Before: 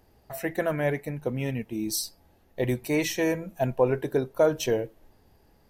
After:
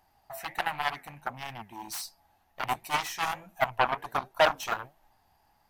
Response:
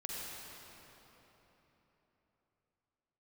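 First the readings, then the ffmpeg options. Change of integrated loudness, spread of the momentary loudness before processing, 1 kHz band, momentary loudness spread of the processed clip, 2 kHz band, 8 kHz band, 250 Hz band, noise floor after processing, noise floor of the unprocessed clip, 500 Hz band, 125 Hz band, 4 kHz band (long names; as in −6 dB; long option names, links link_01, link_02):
−3.5 dB, 9 LU, +8.0 dB, 16 LU, +2.5 dB, −6.5 dB, −17.5 dB, −68 dBFS, −62 dBFS, −8.5 dB, −14.5 dB, +1.5 dB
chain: -af "flanger=delay=4.8:depth=7.8:regen=77:speed=1.4:shape=triangular,aeval=exprs='0.211*(cos(1*acos(clip(val(0)/0.211,-1,1)))-cos(1*PI/2))+0.0531*(cos(7*acos(clip(val(0)/0.211,-1,1)))-cos(7*PI/2))':channel_layout=same,lowshelf=frequency=610:width_type=q:width=3:gain=-8.5,volume=3.5dB"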